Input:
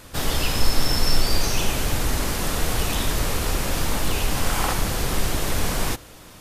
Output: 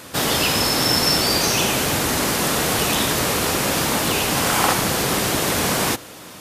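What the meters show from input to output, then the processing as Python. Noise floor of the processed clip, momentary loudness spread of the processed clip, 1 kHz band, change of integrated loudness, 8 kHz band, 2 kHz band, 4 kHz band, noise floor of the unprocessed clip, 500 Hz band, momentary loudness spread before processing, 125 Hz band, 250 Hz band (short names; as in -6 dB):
-39 dBFS, 3 LU, +7.0 dB, +6.0 dB, +7.0 dB, +7.0 dB, +7.0 dB, -45 dBFS, +7.0 dB, 3 LU, 0.0 dB, +6.0 dB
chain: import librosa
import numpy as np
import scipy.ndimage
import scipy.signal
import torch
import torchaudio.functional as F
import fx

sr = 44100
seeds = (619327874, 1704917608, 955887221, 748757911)

y = scipy.signal.sosfilt(scipy.signal.butter(2, 150.0, 'highpass', fs=sr, output='sos'), x)
y = y * 10.0 ** (7.0 / 20.0)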